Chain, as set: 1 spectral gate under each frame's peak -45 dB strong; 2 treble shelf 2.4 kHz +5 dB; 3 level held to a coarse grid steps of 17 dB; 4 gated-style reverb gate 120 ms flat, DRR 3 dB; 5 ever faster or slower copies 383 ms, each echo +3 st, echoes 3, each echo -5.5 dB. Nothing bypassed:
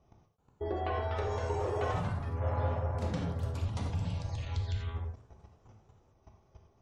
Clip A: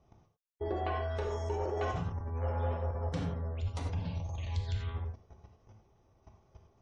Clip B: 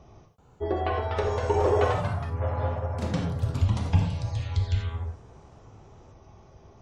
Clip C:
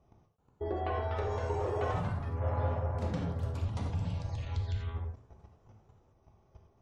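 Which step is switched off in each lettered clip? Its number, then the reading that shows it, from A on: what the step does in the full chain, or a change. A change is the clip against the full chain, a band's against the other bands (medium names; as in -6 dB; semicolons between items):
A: 5, loudness change -1.0 LU; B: 3, crest factor change +4.0 dB; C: 2, 4 kHz band -3.0 dB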